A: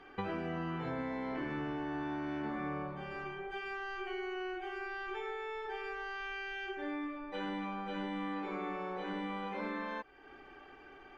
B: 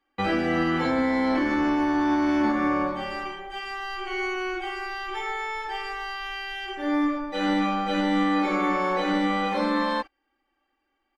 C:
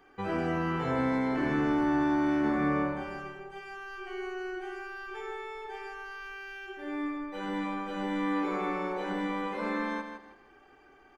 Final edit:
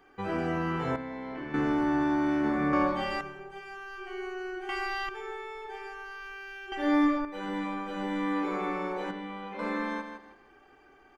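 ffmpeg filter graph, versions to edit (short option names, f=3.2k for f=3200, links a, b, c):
-filter_complex "[0:a]asplit=2[a][b];[1:a]asplit=3[c][d][e];[2:a]asplit=6[f][g][h][i][j][k];[f]atrim=end=0.962[l];[a]atrim=start=0.958:end=1.542[m];[g]atrim=start=1.538:end=2.732[n];[c]atrim=start=2.728:end=3.212[o];[h]atrim=start=3.208:end=4.692[p];[d]atrim=start=4.688:end=5.092[q];[i]atrim=start=5.088:end=6.722[r];[e]atrim=start=6.718:end=7.252[s];[j]atrim=start=7.248:end=9.112[t];[b]atrim=start=9.108:end=9.592[u];[k]atrim=start=9.588[v];[l][m]acrossfade=d=0.004:c1=hsin:c2=hsin[w];[w][n]acrossfade=d=0.004:c1=hsin:c2=hsin[x];[x][o]acrossfade=d=0.004:c1=hsin:c2=hsin[y];[y][p]acrossfade=d=0.004:c1=hsin:c2=hsin[z];[z][q]acrossfade=d=0.004:c1=hsin:c2=hsin[aa];[aa][r]acrossfade=d=0.004:c1=hsin:c2=hsin[ab];[ab][s]acrossfade=d=0.004:c1=hsin:c2=hsin[ac];[ac][t]acrossfade=d=0.004:c1=hsin:c2=hsin[ad];[ad][u]acrossfade=d=0.004:c1=hsin:c2=hsin[ae];[ae][v]acrossfade=d=0.004:c1=hsin:c2=hsin"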